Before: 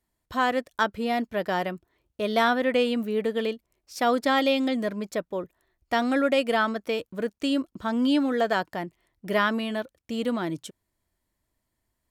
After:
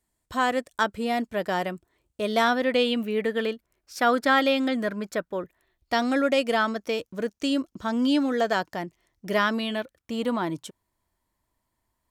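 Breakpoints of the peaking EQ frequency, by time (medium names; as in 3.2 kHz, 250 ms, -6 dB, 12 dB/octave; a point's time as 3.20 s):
peaking EQ +8 dB 0.55 oct
2.31 s 8.1 kHz
3.42 s 1.5 kHz
5.38 s 1.5 kHz
6.06 s 6 kHz
9.47 s 6 kHz
10.14 s 970 Hz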